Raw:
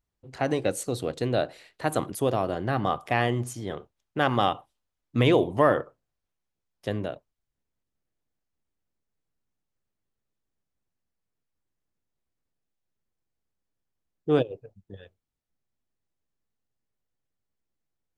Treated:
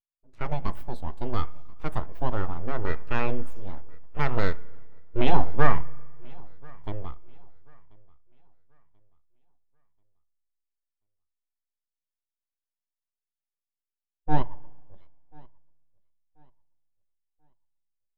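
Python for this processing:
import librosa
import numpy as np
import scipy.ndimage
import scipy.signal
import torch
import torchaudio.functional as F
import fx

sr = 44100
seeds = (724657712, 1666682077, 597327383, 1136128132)

y = np.abs(x)
y = fx.echo_feedback(y, sr, ms=1036, feedback_pct=46, wet_db=-18.0)
y = fx.rev_spring(y, sr, rt60_s=2.3, pass_ms=(35, 56), chirp_ms=40, drr_db=14.5)
y = fx.spectral_expand(y, sr, expansion=1.5)
y = y * 10.0 ** (5.0 / 20.0)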